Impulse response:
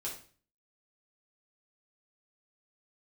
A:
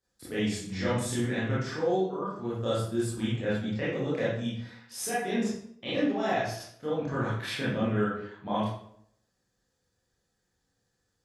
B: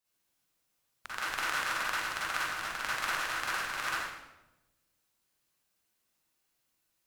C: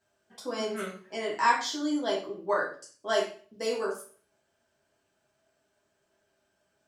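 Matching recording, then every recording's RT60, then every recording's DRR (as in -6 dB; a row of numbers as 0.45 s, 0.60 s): C; 0.65 s, 1.0 s, 0.40 s; -10.0 dB, -9.0 dB, -5.0 dB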